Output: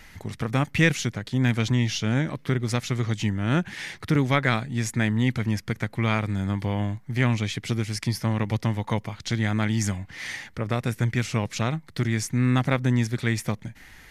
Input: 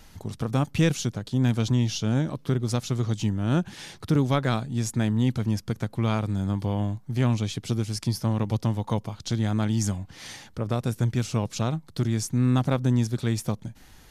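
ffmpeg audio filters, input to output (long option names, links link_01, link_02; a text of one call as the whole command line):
ffmpeg -i in.wav -af "equalizer=frequency=2000:width=1.9:gain=14" out.wav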